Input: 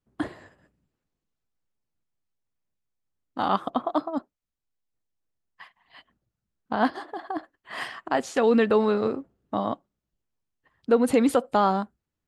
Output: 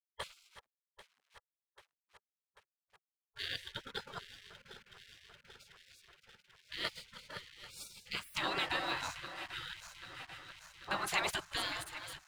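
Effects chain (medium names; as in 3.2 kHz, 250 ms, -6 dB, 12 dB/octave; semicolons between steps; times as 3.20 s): backward echo that repeats 395 ms, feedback 80%, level -13 dB; hysteresis with a dead band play -48 dBFS; spectral gate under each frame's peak -25 dB weak; trim +4 dB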